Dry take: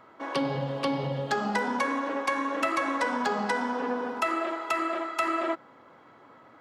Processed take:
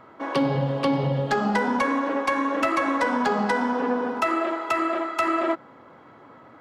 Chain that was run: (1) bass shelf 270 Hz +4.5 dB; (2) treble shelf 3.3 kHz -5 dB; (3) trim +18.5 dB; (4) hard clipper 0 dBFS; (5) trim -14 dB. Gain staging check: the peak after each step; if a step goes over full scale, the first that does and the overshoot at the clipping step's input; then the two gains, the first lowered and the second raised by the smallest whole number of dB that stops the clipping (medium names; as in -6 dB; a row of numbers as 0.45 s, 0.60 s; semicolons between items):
-14.0 dBFS, -14.5 dBFS, +4.0 dBFS, 0.0 dBFS, -14.0 dBFS; step 3, 4.0 dB; step 3 +14.5 dB, step 5 -10 dB